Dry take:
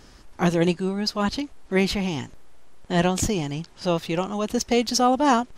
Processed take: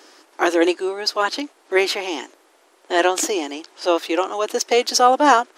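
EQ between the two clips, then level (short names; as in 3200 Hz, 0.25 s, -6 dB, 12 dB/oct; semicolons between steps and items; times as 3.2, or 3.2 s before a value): elliptic high-pass 310 Hz, stop band 50 dB; dynamic EQ 1500 Hz, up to +5 dB, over -42 dBFS, Q 2.8; +6.0 dB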